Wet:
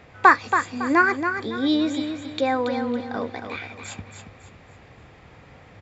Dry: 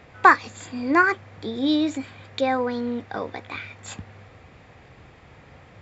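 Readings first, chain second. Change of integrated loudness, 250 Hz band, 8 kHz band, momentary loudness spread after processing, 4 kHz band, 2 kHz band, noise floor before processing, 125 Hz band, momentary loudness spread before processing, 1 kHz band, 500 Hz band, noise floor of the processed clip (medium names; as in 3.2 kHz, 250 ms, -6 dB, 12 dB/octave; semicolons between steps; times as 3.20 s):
+0.5 dB, +1.0 dB, no reading, 19 LU, +1.0 dB, +1.0 dB, -50 dBFS, +0.5 dB, 20 LU, +1.0 dB, +1.0 dB, -49 dBFS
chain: feedback delay 278 ms, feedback 33%, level -7.5 dB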